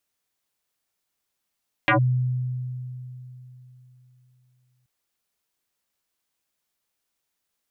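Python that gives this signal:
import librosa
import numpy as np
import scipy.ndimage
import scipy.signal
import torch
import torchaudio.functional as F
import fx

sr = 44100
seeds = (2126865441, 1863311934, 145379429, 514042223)

y = fx.fm2(sr, length_s=2.98, level_db=-14.5, carrier_hz=126.0, ratio=3.48, index=6.4, index_s=0.11, decay_s=3.45, shape='linear')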